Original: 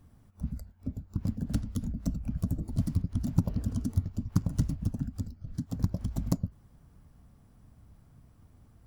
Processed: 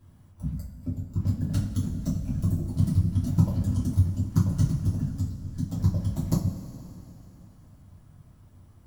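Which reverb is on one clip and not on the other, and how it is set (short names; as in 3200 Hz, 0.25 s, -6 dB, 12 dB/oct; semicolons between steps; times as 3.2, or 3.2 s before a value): two-slope reverb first 0.28 s, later 3.2 s, from -18 dB, DRR -6.5 dB; gain -3.5 dB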